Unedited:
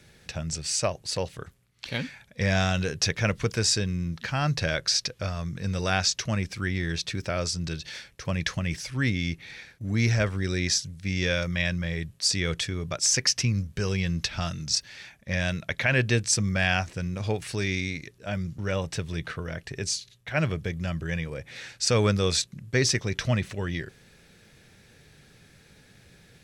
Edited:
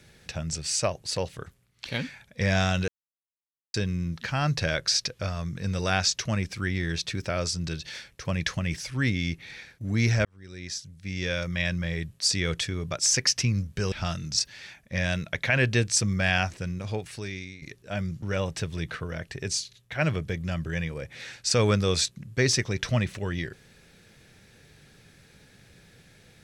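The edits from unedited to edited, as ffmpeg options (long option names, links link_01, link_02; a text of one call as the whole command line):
ffmpeg -i in.wav -filter_complex "[0:a]asplit=6[link_01][link_02][link_03][link_04][link_05][link_06];[link_01]atrim=end=2.88,asetpts=PTS-STARTPTS,afade=type=out:start_time=2.876:duration=0.004:curve=hsin[link_07];[link_02]atrim=start=2.88:end=3.74,asetpts=PTS-STARTPTS,volume=0[link_08];[link_03]atrim=start=3.74:end=10.25,asetpts=PTS-STARTPTS,afade=type=in:duration=0.004:curve=hsin,afade=type=out:start_time=6.506:duration=0.004:curve=hsin[link_09];[link_04]atrim=start=10.25:end=13.922,asetpts=PTS-STARTPTS,afade=type=in:duration=1.54[link_10];[link_05]atrim=start=14.278:end=17.98,asetpts=PTS-STARTPTS,afade=type=out:start_time=2.582:duration=1.12:silence=0.177828[link_11];[link_06]atrim=start=17.98,asetpts=PTS-STARTPTS,afade=type=in:duration=0.004:curve=hsin:silence=0.177828[link_12];[link_07][link_08][link_09][link_10]concat=n=4:v=0:a=1[link_13];[link_11][link_12]concat=n=2:v=0:a=1[link_14];[link_13][link_14]acrossfade=duration=0.004:curve1=hsin:curve2=hsin" out.wav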